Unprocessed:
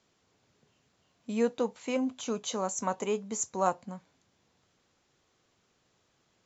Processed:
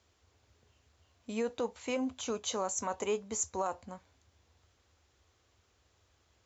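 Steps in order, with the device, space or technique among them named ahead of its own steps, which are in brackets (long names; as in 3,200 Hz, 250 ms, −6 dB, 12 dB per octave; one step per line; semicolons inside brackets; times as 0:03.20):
car stereo with a boomy subwoofer (low shelf with overshoot 110 Hz +13 dB, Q 3; brickwall limiter −23 dBFS, peak gain reduction 10 dB)
high-pass filter 100 Hz 6 dB per octave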